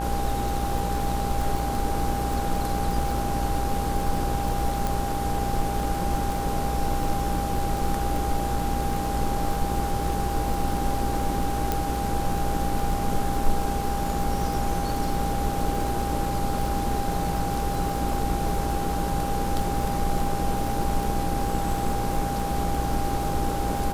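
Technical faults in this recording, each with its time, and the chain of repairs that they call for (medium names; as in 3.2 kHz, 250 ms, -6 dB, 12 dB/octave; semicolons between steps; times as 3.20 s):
buzz 60 Hz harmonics 27 -31 dBFS
crackle 44 per s -28 dBFS
whine 800 Hz -29 dBFS
4.87 s: pop
11.72 s: pop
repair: de-click; de-hum 60 Hz, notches 27; band-stop 800 Hz, Q 30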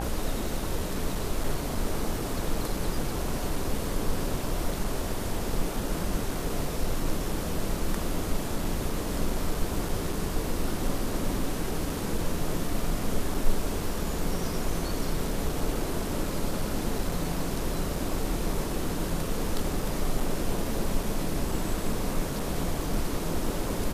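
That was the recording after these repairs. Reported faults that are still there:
nothing left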